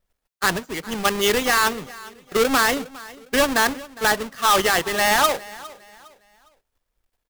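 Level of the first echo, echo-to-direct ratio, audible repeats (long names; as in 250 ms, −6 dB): −20.0 dB, −19.5 dB, 2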